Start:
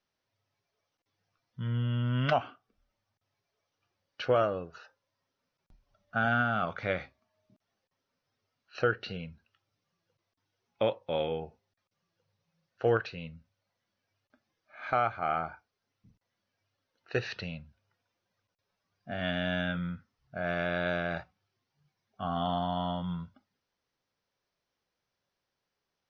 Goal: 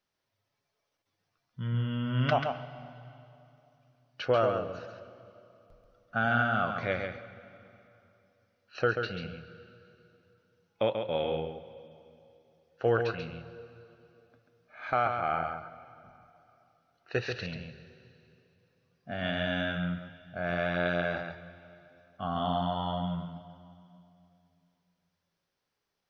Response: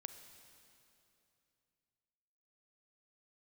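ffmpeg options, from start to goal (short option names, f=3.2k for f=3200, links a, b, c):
-filter_complex "[0:a]asplit=2[a][b];[1:a]atrim=start_sample=2205,adelay=137[c];[b][c]afir=irnorm=-1:irlink=0,volume=-1dB[d];[a][d]amix=inputs=2:normalize=0"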